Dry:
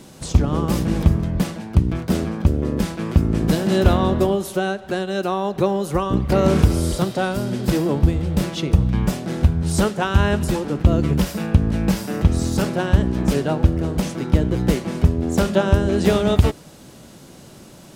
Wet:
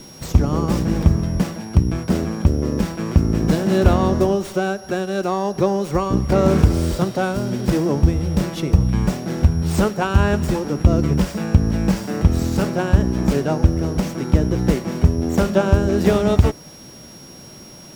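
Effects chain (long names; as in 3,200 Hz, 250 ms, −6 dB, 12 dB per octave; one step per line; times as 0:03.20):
steady tone 5,600 Hz −41 dBFS
dynamic equaliser 3,400 Hz, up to −5 dB, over −42 dBFS, Q 1.4
windowed peak hold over 3 samples
level +1 dB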